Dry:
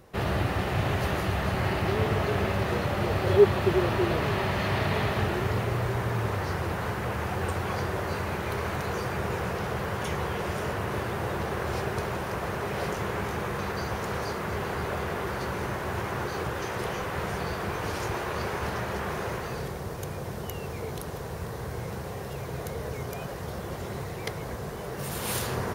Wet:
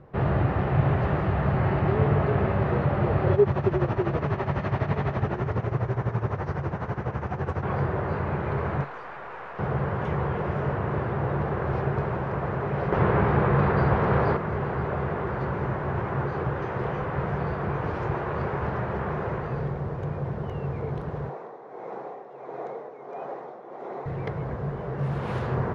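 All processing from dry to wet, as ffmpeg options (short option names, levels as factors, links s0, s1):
-filter_complex "[0:a]asettb=1/sr,asplit=3[s0][s1][s2];[s0]atrim=end=3.334[s3];[s1]atrim=start=3.33:end=7.63,asetpts=PTS-STARTPTS,afade=t=in:d=0.004:c=qsin,afade=t=out:st=4.296:d=0.004:c=qsin,equalizer=f=6000:t=o:w=0.56:g=11,tremolo=f=12:d=0.74[s4];[s2]atrim=start=7.626[s5];[s3][s4]acrossfade=d=0.004:c1=hsin:c2=qsin[s6];[s6][s5]acrossfade=d=0.004:c1=qsin:c2=hsin,asettb=1/sr,asplit=3[s7][s8][s9];[s7]atrim=end=8.844[s10];[s8]atrim=start=8.84:end=9.59,asetpts=PTS-STARTPTS,afade=t=in:d=0.004:c=qsin,afade=t=out:st=0.746:d=0.004:c=qsin,highpass=790,aeval=exprs='(tanh(35.5*val(0)+0.65)-tanh(0.65))/35.5':c=same[s11];[s9]atrim=start=9.586[s12];[s10][s11]acrossfade=d=0.004:c1=hsin:c2=qsin[s13];[s13][s12]acrossfade=d=0.004:c1=qsin:c2=hsin,asettb=1/sr,asplit=3[s14][s15][s16];[s14]atrim=end=12.924[s17];[s15]atrim=start=12.92:end=14.37,asetpts=PTS-STARTPTS,afade=t=in:d=0.004:c=qsin,afade=t=out:st=1.446:d=0.004:c=qsin,lowpass=f=5200:w=0.5412,lowpass=f=5200:w=1.3066,acontrast=68[s18];[s16]atrim=start=14.366[s19];[s17][s18]acrossfade=d=0.004:c1=hsin:c2=qsin[s20];[s20][s19]acrossfade=d=0.004:c1=qsin:c2=hsin,asettb=1/sr,asplit=3[s21][s22][s23];[s21]atrim=end=21.294[s24];[s22]atrim=start=21.29:end=24.06,asetpts=PTS-STARTPTS,afade=t=in:d=0.004:c=qsin,afade=t=out:st=2.766:d=0.004:c=qsin,tremolo=f=1.5:d=0.63,highpass=f=290:w=0.5412,highpass=f=290:w=1.3066,equalizer=f=760:t=q:w=4:g=6,equalizer=f=1600:t=q:w=4:g=-5,equalizer=f=2900:t=q:w=4:g=-7,equalizer=f=4700:t=q:w=4:g=-4,lowpass=f=7800:w=0.5412,lowpass=f=7800:w=1.3066[s25];[s23]atrim=start=24.056[s26];[s24][s25]acrossfade=d=0.004:c1=hsin:c2=qsin[s27];[s27][s26]acrossfade=d=0.004:c1=qsin:c2=hsin,lowpass=1500,equalizer=f=140:w=6.2:g=10,alimiter=level_in=3.55:limit=0.891:release=50:level=0:latency=1,volume=0.376"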